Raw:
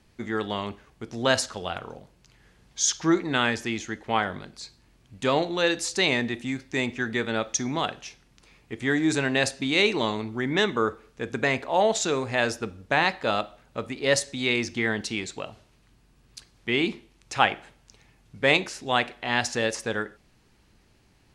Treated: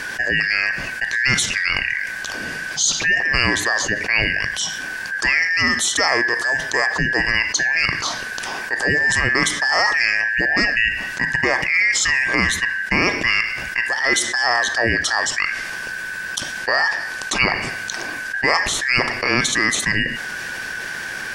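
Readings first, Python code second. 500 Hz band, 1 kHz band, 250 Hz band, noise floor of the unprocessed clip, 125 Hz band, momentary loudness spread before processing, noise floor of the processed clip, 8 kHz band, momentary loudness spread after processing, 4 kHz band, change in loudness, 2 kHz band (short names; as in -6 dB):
-1.0 dB, +3.5 dB, -0.5 dB, -61 dBFS, +3.5 dB, 14 LU, -29 dBFS, +9.0 dB, 10 LU, +7.5 dB, +7.5 dB, +13.0 dB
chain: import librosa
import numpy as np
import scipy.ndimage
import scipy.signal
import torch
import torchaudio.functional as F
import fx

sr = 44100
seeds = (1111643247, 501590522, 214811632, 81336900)

y = fx.band_shuffle(x, sr, order='2143')
y = fx.env_flatten(y, sr, amount_pct=70)
y = F.gain(torch.from_numpy(y), 1.0).numpy()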